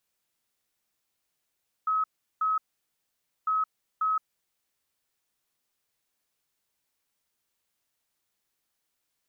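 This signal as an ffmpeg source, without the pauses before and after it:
-f lavfi -i "aevalsrc='0.0708*sin(2*PI*1280*t)*clip(min(mod(mod(t,1.6),0.54),0.17-mod(mod(t,1.6),0.54))/0.005,0,1)*lt(mod(t,1.6),1.08)':d=3.2:s=44100"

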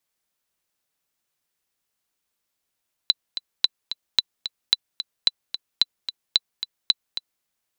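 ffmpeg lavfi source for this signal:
-f lavfi -i "aevalsrc='pow(10,(-3-11.5*gte(mod(t,2*60/221),60/221))/20)*sin(2*PI*3990*mod(t,60/221))*exp(-6.91*mod(t,60/221)/0.03)':d=4.34:s=44100"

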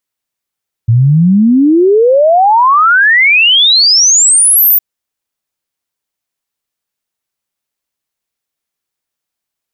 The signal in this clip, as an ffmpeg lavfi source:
-f lavfi -i "aevalsrc='0.631*clip(min(t,3.91-t)/0.01,0,1)*sin(2*PI*110*3.91/log(15000/110)*(exp(log(15000/110)*t/3.91)-1))':d=3.91:s=44100"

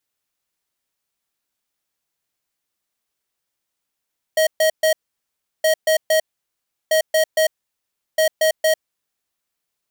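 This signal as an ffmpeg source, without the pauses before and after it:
-f lavfi -i "aevalsrc='0.168*(2*lt(mod(632*t,1),0.5)-1)*clip(min(mod(mod(t,1.27),0.23),0.1-mod(mod(t,1.27),0.23))/0.005,0,1)*lt(mod(t,1.27),0.69)':d=5.08:s=44100"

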